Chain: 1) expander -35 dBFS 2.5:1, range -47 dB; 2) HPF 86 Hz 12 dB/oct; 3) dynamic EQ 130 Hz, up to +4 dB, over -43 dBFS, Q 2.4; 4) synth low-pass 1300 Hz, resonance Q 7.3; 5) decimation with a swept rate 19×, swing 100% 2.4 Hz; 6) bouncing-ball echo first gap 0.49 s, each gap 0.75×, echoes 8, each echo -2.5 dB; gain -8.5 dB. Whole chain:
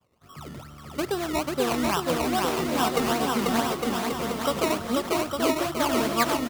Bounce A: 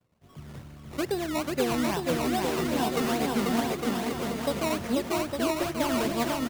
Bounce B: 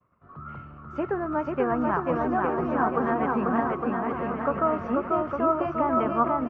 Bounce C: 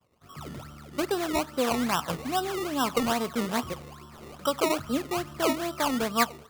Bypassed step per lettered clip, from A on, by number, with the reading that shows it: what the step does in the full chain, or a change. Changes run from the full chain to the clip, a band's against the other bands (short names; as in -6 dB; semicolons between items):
4, 125 Hz band +3.5 dB; 5, 2 kHz band -3.5 dB; 6, momentary loudness spread change +6 LU